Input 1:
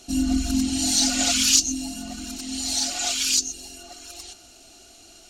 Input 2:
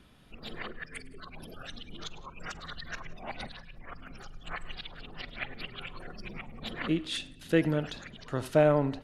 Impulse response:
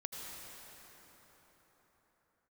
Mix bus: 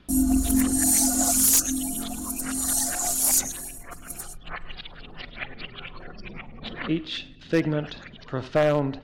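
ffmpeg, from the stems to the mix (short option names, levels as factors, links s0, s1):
-filter_complex "[0:a]agate=range=0.00631:threshold=0.01:ratio=16:detection=peak,firequalizer=gain_entry='entry(1000,0);entry(2500,-23);entry(10000,14)':delay=0.05:min_phase=1,volume=1.12[s0];[1:a]lowpass=f=5300:w=0.5412,lowpass=f=5300:w=1.3066,volume=1.41[s1];[s0][s1]amix=inputs=2:normalize=0,aeval=exprs='0.251*(abs(mod(val(0)/0.251+3,4)-2)-1)':c=same"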